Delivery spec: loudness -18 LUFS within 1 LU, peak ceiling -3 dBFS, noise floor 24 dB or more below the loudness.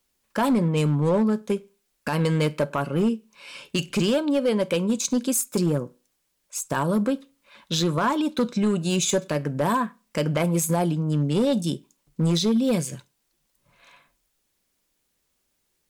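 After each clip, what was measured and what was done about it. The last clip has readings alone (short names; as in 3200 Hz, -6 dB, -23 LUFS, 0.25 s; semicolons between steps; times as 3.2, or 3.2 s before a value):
clipped 1.4%; flat tops at -16.0 dBFS; loudness -24.0 LUFS; peak -16.0 dBFS; loudness target -18.0 LUFS
-> clip repair -16 dBFS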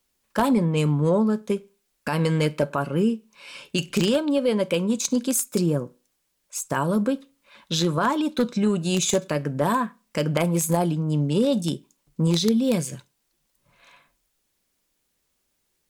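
clipped 0.0%; loudness -23.5 LUFS; peak -7.0 dBFS; loudness target -18.0 LUFS
-> gain +5.5 dB; limiter -3 dBFS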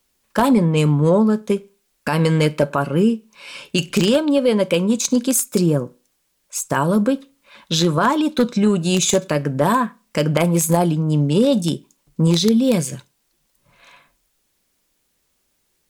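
loudness -18.5 LUFS; peak -3.0 dBFS; noise floor -68 dBFS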